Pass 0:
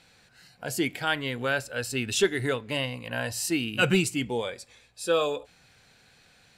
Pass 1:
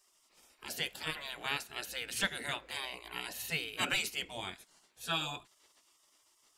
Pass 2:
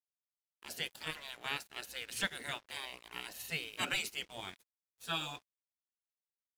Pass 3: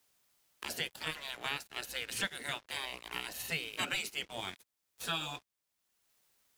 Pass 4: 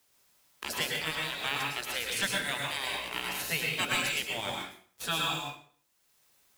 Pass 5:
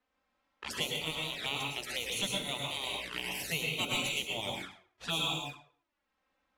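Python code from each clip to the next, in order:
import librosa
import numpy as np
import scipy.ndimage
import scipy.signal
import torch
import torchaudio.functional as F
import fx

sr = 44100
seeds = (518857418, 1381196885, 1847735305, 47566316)

y1 = fx.spec_gate(x, sr, threshold_db=-15, keep='weak')
y2 = np.sign(y1) * np.maximum(np.abs(y1) - 10.0 ** (-52.0 / 20.0), 0.0)
y2 = y2 * librosa.db_to_amplitude(-2.0)
y3 = fx.band_squash(y2, sr, depth_pct=70)
y3 = y3 * librosa.db_to_amplitude(2.0)
y4 = fx.mod_noise(y3, sr, seeds[0], snr_db=21)
y4 = fx.rev_plate(y4, sr, seeds[1], rt60_s=0.51, hf_ratio=0.85, predelay_ms=95, drr_db=-1.0)
y4 = y4 * librosa.db_to_amplitude(3.5)
y5 = fx.env_flanger(y4, sr, rest_ms=4.0, full_db=-30.5)
y5 = fx.env_lowpass(y5, sr, base_hz=1900.0, full_db=-34.0)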